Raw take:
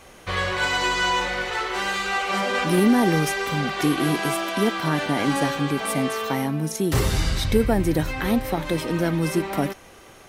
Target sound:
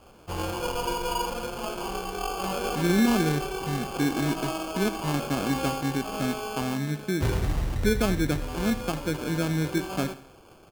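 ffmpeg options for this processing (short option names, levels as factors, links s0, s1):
-af "lowpass=f=1600:p=1,acrusher=samples=22:mix=1:aa=0.000001,aecho=1:1:78|156|234|312:0.158|0.0729|0.0335|0.0154,asetrate=42336,aresample=44100,volume=0.631"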